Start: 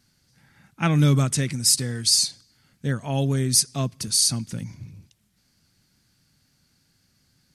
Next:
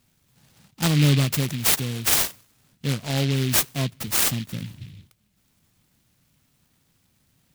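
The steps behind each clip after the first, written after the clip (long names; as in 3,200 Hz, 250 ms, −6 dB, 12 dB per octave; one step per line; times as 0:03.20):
short delay modulated by noise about 2,900 Hz, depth 0.19 ms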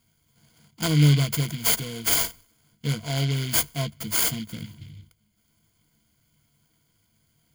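EQ curve with evenly spaced ripples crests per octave 1.8, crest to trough 12 dB
level −4 dB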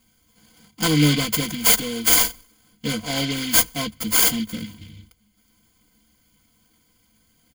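comb filter 3.9 ms, depth 82%
level +4 dB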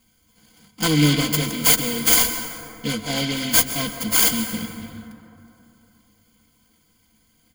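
dense smooth reverb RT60 3 s, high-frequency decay 0.4×, pre-delay 115 ms, DRR 8 dB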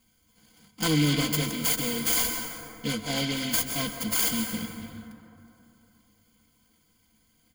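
brickwall limiter −9.5 dBFS, peak gain reduction 8 dB
level −4.5 dB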